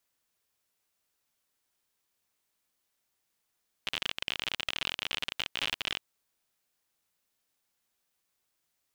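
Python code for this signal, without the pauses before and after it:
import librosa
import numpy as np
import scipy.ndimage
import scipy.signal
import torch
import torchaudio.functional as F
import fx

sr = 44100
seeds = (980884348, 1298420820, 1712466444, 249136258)

y = fx.geiger_clicks(sr, seeds[0], length_s=2.12, per_s=52.0, level_db=-15.0)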